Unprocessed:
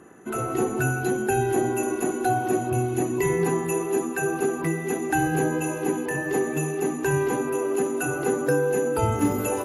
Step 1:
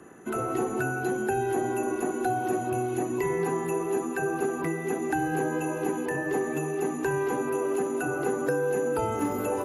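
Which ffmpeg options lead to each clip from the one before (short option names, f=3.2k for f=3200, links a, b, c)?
-filter_complex "[0:a]acrossover=split=220|570|1700[a][b][c][d];[a]acompressor=threshold=-40dB:ratio=4[e];[b]acompressor=threshold=-29dB:ratio=4[f];[c]acompressor=threshold=-30dB:ratio=4[g];[d]acompressor=threshold=-43dB:ratio=4[h];[e][f][g][h]amix=inputs=4:normalize=0"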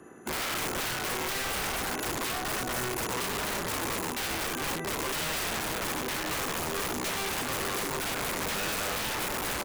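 -af "aecho=1:1:60|120|180|240|300|360:0.335|0.178|0.0941|0.0499|0.0264|0.014,aeval=exprs='(mod(18.8*val(0)+1,2)-1)/18.8':c=same,volume=-1.5dB"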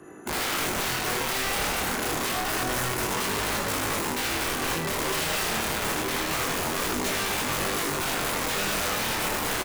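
-af "aecho=1:1:80:0.473,flanger=delay=19.5:depth=7.7:speed=0.27,volume=6.5dB"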